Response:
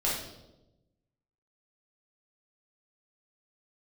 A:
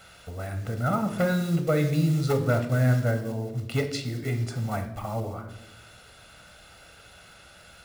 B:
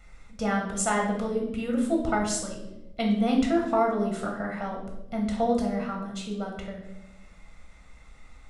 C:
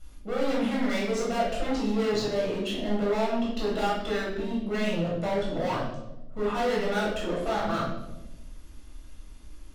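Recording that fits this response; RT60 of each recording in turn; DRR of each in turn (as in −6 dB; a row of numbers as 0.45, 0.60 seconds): C; 1.0, 1.0, 1.0 seconds; 6.5, 0.5, −6.0 decibels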